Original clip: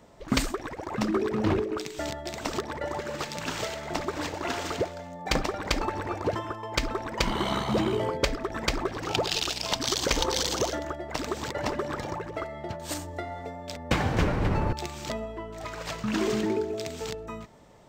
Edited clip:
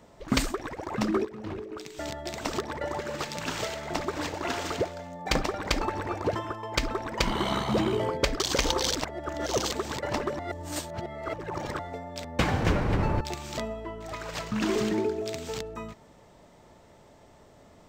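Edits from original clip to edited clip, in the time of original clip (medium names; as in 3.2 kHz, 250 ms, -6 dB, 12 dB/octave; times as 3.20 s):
1.25–2.23 s: fade in quadratic, from -13.5 dB
8.40–9.92 s: delete
10.47–11.24 s: reverse
11.91–13.31 s: reverse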